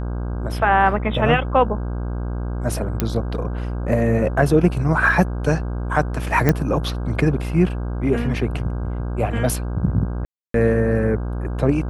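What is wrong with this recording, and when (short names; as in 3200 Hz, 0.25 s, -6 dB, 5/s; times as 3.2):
buzz 60 Hz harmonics 27 -25 dBFS
3 pop -5 dBFS
6.49 pop -4 dBFS
10.25–10.54 gap 0.293 s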